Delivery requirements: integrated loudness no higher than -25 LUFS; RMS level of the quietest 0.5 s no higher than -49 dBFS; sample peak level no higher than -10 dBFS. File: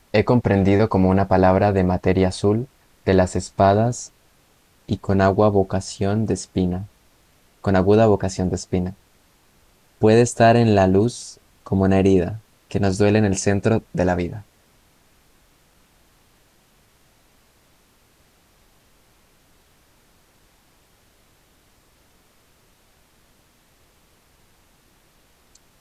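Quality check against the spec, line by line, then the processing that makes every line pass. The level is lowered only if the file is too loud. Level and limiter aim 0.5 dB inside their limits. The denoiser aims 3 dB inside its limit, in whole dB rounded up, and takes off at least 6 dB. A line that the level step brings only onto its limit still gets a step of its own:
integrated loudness -19.0 LUFS: fail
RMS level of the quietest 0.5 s -58 dBFS: OK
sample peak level -5.0 dBFS: fail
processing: gain -6.5 dB

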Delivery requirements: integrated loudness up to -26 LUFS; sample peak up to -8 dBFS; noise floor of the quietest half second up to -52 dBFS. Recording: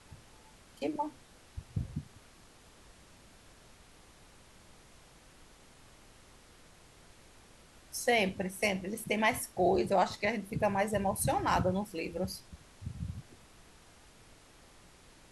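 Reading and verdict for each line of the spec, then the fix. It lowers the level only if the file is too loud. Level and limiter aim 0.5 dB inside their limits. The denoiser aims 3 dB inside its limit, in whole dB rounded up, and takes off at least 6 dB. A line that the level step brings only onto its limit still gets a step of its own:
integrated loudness -32.5 LUFS: OK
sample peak -15.5 dBFS: OK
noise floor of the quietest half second -58 dBFS: OK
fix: none

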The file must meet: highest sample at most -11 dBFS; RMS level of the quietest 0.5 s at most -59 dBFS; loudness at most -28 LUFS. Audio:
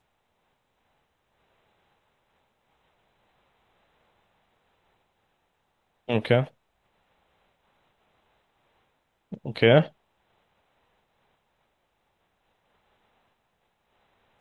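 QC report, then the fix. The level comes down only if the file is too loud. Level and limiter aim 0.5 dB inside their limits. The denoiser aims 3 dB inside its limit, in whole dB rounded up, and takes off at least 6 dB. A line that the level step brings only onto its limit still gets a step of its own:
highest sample -4.5 dBFS: fail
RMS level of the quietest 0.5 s -73 dBFS: OK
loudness -24.0 LUFS: fail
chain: gain -4.5 dB; limiter -11.5 dBFS

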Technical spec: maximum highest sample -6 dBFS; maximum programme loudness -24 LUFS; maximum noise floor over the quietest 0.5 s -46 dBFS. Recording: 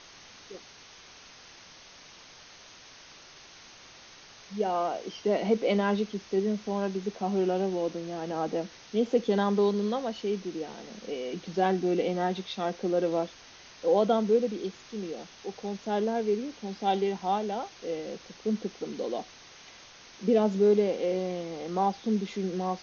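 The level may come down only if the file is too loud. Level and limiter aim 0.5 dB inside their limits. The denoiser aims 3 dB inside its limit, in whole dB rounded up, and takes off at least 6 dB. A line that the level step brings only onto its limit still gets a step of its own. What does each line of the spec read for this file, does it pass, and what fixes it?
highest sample -12.5 dBFS: OK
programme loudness -29.5 LUFS: OK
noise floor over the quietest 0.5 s -51 dBFS: OK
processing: none

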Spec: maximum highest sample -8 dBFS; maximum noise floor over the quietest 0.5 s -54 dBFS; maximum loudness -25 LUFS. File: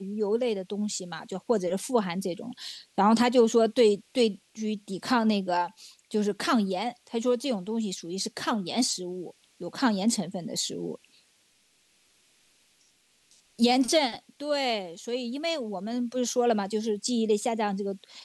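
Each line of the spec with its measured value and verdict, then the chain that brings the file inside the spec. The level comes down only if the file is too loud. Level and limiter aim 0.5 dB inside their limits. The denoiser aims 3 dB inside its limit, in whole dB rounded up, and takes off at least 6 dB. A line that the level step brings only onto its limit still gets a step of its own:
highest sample -10.0 dBFS: OK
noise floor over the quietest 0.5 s -66 dBFS: OK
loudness -27.5 LUFS: OK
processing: none

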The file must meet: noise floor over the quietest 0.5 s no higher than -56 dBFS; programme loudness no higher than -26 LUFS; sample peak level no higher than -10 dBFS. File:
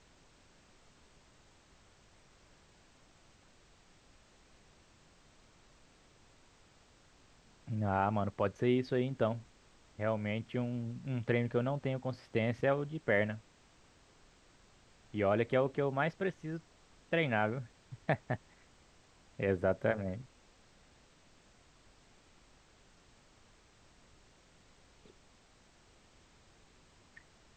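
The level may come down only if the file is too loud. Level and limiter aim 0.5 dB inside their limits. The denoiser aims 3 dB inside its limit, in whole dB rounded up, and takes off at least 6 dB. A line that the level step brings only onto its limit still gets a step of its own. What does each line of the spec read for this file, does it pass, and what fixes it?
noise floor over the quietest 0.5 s -64 dBFS: OK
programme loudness -34.5 LUFS: OK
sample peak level -15.5 dBFS: OK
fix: none

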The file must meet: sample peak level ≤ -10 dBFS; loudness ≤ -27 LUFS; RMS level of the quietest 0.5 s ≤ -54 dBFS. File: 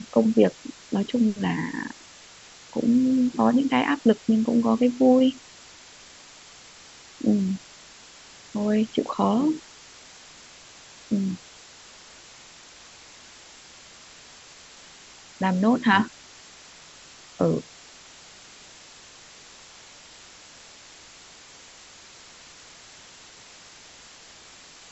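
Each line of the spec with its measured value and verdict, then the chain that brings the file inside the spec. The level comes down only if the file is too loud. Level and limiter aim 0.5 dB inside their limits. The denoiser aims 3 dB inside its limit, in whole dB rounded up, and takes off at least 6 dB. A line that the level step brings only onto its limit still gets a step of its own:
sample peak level -5.5 dBFS: fail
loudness -23.5 LUFS: fail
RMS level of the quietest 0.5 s -48 dBFS: fail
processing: denoiser 6 dB, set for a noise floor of -48 dBFS; gain -4 dB; limiter -10.5 dBFS

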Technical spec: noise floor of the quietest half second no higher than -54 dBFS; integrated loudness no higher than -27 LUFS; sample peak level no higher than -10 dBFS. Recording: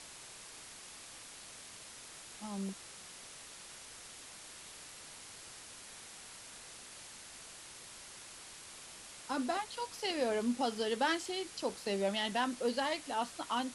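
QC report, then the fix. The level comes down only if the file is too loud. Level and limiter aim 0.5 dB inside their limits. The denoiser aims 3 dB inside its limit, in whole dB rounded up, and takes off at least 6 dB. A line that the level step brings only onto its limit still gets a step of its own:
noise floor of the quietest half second -52 dBFS: fail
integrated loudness -39.5 LUFS: OK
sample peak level -19.5 dBFS: OK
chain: denoiser 6 dB, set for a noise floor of -52 dBFS

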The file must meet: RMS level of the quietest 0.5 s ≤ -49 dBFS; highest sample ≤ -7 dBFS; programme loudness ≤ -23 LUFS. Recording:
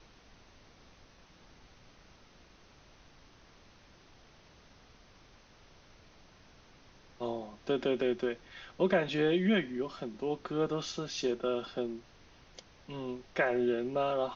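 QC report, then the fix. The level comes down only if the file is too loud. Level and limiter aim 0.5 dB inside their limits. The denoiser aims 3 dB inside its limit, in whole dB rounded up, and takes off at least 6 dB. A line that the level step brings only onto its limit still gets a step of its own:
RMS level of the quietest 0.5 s -59 dBFS: OK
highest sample -16.0 dBFS: OK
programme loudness -33.0 LUFS: OK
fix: none

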